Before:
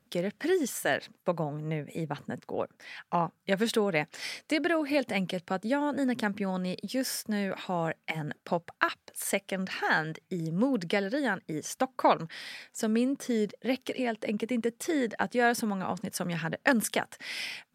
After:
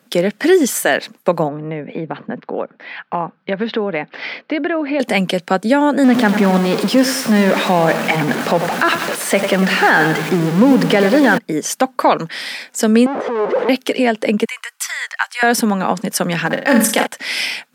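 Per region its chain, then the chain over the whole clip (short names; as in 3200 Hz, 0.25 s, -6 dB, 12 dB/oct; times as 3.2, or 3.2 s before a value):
1.48–5 Bessel low-pass 2400 Hz, order 8 + compressor 2:1, threshold -36 dBFS
6.04–11.38 zero-crossing step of -29.5 dBFS + LPF 2600 Hz 6 dB/oct + lo-fi delay 96 ms, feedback 55%, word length 7-bit, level -9.5 dB
13.06–13.69 infinite clipping + LPF 1100 Hz + resonant low shelf 300 Hz -12 dB, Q 1.5
14.45–15.43 steep high-pass 990 Hz + notch 3600 Hz, Q 16
16.46–17.07 G.711 law mismatch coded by A + comb 3.8 ms, depth 48% + flutter echo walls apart 7.6 m, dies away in 0.41 s
whole clip: HPF 180 Hz 24 dB/oct; maximiser +17 dB; gain -1 dB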